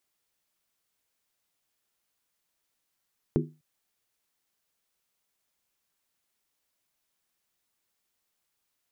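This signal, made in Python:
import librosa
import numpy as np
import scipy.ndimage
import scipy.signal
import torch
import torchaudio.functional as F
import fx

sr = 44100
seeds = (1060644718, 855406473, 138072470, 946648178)

y = fx.strike_skin(sr, length_s=0.25, level_db=-22, hz=154.0, decay_s=0.31, tilt_db=1.0, modes=5)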